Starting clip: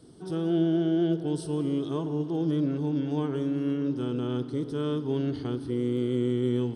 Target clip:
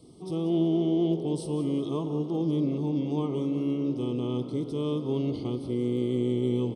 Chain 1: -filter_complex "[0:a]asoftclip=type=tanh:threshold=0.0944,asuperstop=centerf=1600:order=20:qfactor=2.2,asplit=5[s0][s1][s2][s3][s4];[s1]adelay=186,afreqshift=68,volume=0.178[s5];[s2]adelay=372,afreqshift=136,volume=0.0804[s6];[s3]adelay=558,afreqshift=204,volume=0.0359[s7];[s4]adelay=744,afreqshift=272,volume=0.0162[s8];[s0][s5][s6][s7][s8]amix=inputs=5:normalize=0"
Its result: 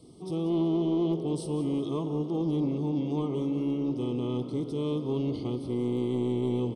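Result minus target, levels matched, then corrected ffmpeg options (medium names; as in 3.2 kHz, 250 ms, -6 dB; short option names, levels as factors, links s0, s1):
saturation: distortion +15 dB
-filter_complex "[0:a]asoftclip=type=tanh:threshold=0.266,asuperstop=centerf=1600:order=20:qfactor=2.2,asplit=5[s0][s1][s2][s3][s4];[s1]adelay=186,afreqshift=68,volume=0.178[s5];[s2]adelay=372,afreqshift=136,volume=0.0804[s6];[s3]adelay=558,afreqshift=204,volume=0.0359[s7];[s4]adelay=744,afreqshift=272,volume=0.0162[s8];[s0][s5][s6][s7][s8]amix=inputs=5:normalize=0"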